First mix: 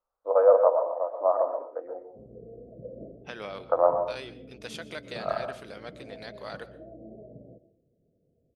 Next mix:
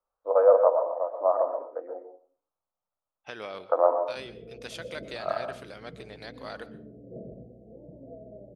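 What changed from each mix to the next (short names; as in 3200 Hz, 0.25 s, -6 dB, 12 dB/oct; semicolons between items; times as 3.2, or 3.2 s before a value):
background: entry +2.00 s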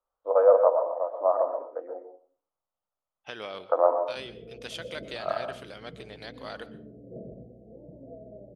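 master: add bell 3100 Hz +7 dB 0.25 oct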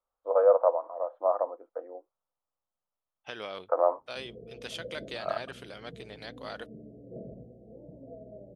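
reverb: off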